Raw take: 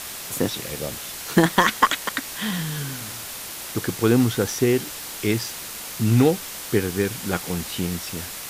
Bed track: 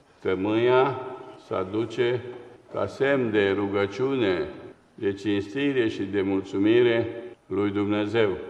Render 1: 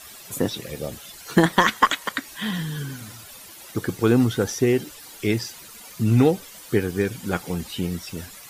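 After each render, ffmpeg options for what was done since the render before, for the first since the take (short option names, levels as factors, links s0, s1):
-af "afftdn=nr=13:nf=-35"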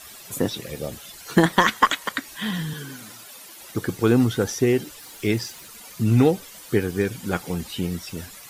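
-filter_complex "[0:a]asettb=1/sr,asplit=3[s0][s1][s2];[s0]atrim=end=2.734[s3];[s1]atrim=start=2.73:end=3.61,asetpts=PTS-STARTPTS,afade=t=in:d=0.004:c=qsin,afade=t=out:st=0.876:d=0.004:c=qsin,highpass=210[s4];[s2]atrim=start=3.606[s5];[s3][s4]acrossfade=d=0.004:c1=hsin:c2=qsin[s6];[s6][s5]acrossfade=d=0.004:c1=qsin:c2=hsin,asettb=1/sr,asplit=3[s7][s8][s9];[s7]atrim=end=4.984[s10];[s8]atrim=start=4.98:end=5.67,asetpts=PTS-STARTPTS,afade=t=in:d=0.004:c=qsin,afade=t=out:st=0.686:d=0.004:c=qsin,acrusher=bits=7:mix=0:aa=0.5[s11];[s9]atrim=start=5.666[s12];[s10][s11]acrossfade=d=0.004:c1=hsin:c2=qsin[s13];[s13][s12]acrossfade=d=0.004:c1=qsin:c2=hsin"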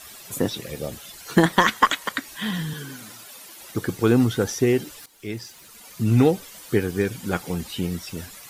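-filter_complex "[0:a]asplit=2[s0][s1];[s0]atrim=end=5.06,asetpts=PTS-STARTPTS,afade=t=out:st=5.056:d=0.004:c=hsin:silence=0.158489[s2];[s1]atrim=start=5.06,asetpts=PTS-STARTPTS,afade=t=in:d=1.13:silence=0.158489[s3];[s2][s3]concat=n=2:v=0:a=1"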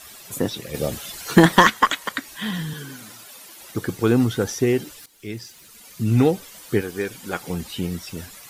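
-filter_complex "[0:a]asettb=1/sr,asplit=3[s0][s1][s2];[s0]atrim=end=0.744[s3];[s1]atrim=start=0.74:end=1.68,asetpts=PTS-STARTPTS,afade=t=in:d=0.004:c=qsin,afade=t=out:st=0.936:d=0.004:c=qsin,acontrast=57[s4];[s2]atrim=start=1.676[s5];[s3][s4]acrossfade=d=0.004:c1=hsin:c2=qsin[s6];[s6][s5]acrossfade=d=0.004:c1=qsin:c2=hsin,asettb=1/sr,asplit=3[s7][s8][s9];[s7]atrim=end=4.934[s10];[s8]atrim=start=4.93:end=6.15,asetpts=PTS-STARTPTS,afade=t=in:d=0.004:c=qsin,afade=t=out:st=1.216:d=0.004:c=qsin,equalizer=f=870:w=0.87:g=-4.5[s11];[s9]atrim=start=6.146[s12];[s10][s11]acrossfade=d=0.004:c1=hsin:c2=qsin[s13];[s13][s12]acrossfade=d=0.004:c1=qsin:c2=hsin,asettb=1/sr,asplit=3[s14][s15][s16];[s14]atrim=end=6.814[s17];[s15]atrim=start=6.81:end=7.41,asetpts=PTS-STARTPTS,afade=t=in:d=0.004:c=qsin,afade=t=out:st=0.596:d=0.004:c=qsin,equalizer=f=110:w=0.55:g=-11[s18];[s16]atrim=start=7.406[s19];[s17][s18]acrossfade=d=0.004:c1=hsin:c2=qsin[s20];[s20][s19]acrossfade=d=0.004:c1=qsin:c2=hsin"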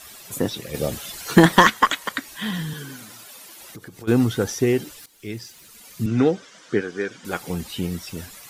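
-filter_complex "[0:a]asplit=3[s0][s1][s2];[s0]afade=t=out:st=3.04:d=0.02[s3];[s1]acompressor=threshold=0.0141:ratio=6:attack=3.2:release=140:knee=1:detection=peak,afade=t=in:st=3.04:d=0.02,afade=t=out:st=4.07:d=0.02[s4];[s2]afade=t=in:st=4.07:d=0.02[s5];[s3][s4][s5]amix=inputs=3:normalize=0,asettb=1/sr,asplit=3[s6][s7][s8];[s6]atrim=end=6.064[s9];[s7]atrim=start=6.06:end=7.25,asetpts=PTS-STARTPTS,afade=t=in:d=0.004:c=qsin,afade=t=out:st=1.186:d=0.004:c=qsin,highpass=170,equalizer=f=860:t=q:w=4:g=-5,equalizer=f=1500:t=q:w=4:g=5,equalizer=f=2600:t=q:w=4:g=-4,equalizer=f=4300:t=q:w=4:g=-5,lowpass=f=6300:w=0.5412,lowpass=f=6300:w=1.3066[s10];[s8]atrim=start=7.246[s11];[s9][s10]acrossfade=d=0.004:c1=hsin:c2=qsin[s12];[s12][s11]acrossfade=d=0.004:c1=qsin:c2=hsin"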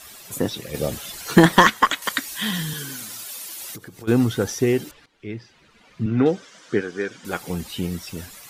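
-filter_complex "[0:a]asettb=1/sr,asplit=3[s0][s1][s2];[s0]atrim=end=2.024[s3];[s1]atrim=start=2.02:end=3.78,asetpts=PTS-STARTPTS,afade=t=in:d=0.004:c=qsin,afade=t=out:st=1.756:d=0.004:c=qsin,highshelf=f=2700:g=9.5[s4];[s2]atrim=start=3.776[s5];[s3][s4]acrossfade=d=0.004:c1=hsin:c2=qsin[s6];[s6][s5]acrossfade=d=0.004:c1=qsin:c2=hsin,asettb=1/sr,asplit=3[s7][s8][s9];[s7]atrim=end=4.914[s10];[s8]atrim=start=4.91:end=6.26,asetpts=PTS-STARTPTS,afade=t=in:d=0.004:c=qsin,afade=t=out:st=1.346:d=0.004:c=qsin,lowpass=2600[s11];[s9]atrim=start=6.256[s12];[s10][s11]acrossfade=d=0.004:c1=hsin:c2=qsin[s13];[s13][s12]acrossfade=d=0.004:c1=qsin:c2=hsin"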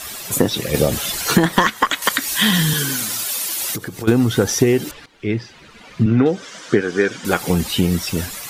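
-af "acompressor=threshold=0.0794:ratio=12,alimiter=level_in=3.76:limit=0.891:release=50:level=0:latency=1"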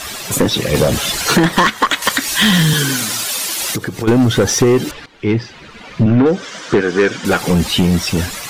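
-filter_complex "[0:a]asplit=2[s0][s1];[s1]adynamicsmooth=sensitivity=3.5:basefreq=8000,volume=1.33[s2];[s0][s2]amix=inputs=2:normalize=0,asoftclip=type=tanh:threshold=0.501"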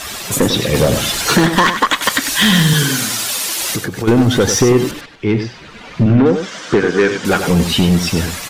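-af "aecho=1:1:97:0.376"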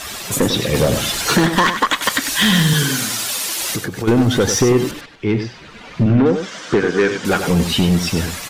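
-af "volume=0.75"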